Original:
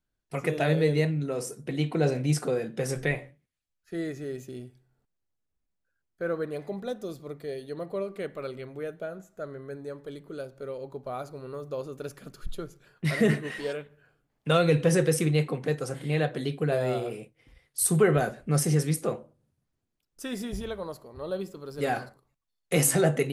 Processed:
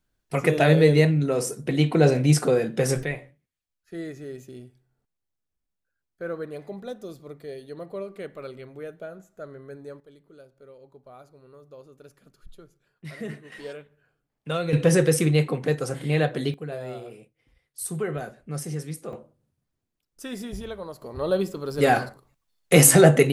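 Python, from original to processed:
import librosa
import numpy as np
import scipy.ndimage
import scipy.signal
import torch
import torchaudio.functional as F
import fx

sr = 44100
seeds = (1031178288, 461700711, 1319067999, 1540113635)

y = fx.gain(x, sr, db=fx.steps((0.0, 7.0), (3.03, -2.0), (10.0, -12.0), (13.52, -5.0), (14.73, 4.0), (16.54, -7.5), (19.13, -0.5), (21.02, 9.0)))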